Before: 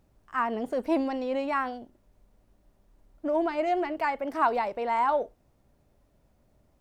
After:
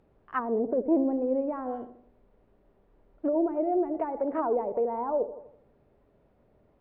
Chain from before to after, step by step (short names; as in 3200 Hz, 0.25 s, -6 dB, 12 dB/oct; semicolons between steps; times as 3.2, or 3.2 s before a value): Gaussian blur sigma 2.8 samples; bell 430 Hz +7.5 dB 0.43 oct; on a send: darkening echo 82 ms, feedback 50%, low-pass 930 Hz, level -12 dB; on the sum: treble ducked by the level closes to 500 Hz, closed at -24.5 dBFS; low shelf 120 Hz -7.5 dB; gain +3 dB